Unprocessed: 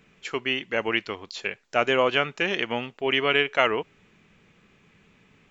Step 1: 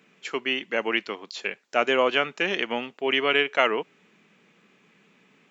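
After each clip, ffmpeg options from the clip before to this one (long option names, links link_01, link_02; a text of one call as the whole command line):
ffmpeg -i in.wav -af "highpass=frequency=180:width=0.5412,highpass=frequency=180:width=1.3066" out.wav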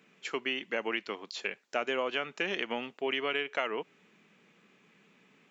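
ffmpeg -i in.wav -af "acompressor=threshold=-25dB:ratio=4,volume=-3.5dB" out.wav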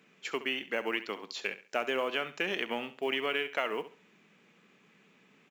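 ffmpeg -i in.wav -af "acrusher=bits=8:mode=log:mix=0:aa=0.000001,aecho=1:1:68|136|204:0.2|0.0559|0.0156" out.wav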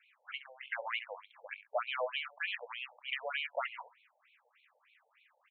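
ffmpeg -i in.wav -filter_complex "[0:a]acrossover=split=220|1200|1900[link_01][link_02][link_03][link_04];[link_04]asoftclip=type=hard:threshold=-34.5dB[link_05];[link_01][link_02][link_03][link_05]amix=inputs=4:normalize=0,afftfilt=real='re*between(b*sr/1024,650*pow(3100/650,0.5+0.5*sin(2*PI*3.3*pts/sr))/1.41,650*pow(3100/650,0.5+0.5*sin(2*PI*3.3*pts/sr))*1.41)':imag='im*between(b*sr/1024,650*pow(3100/650,0.5+0.5*sin(2*PI*3.3*pts/sr))/1.41,650*pow(3100/650,0.5+0.5*sin(2*PI*3.3*pts/sr))*1.41)':win_size=1024:overlap=0.75,volume=1dB" out.wav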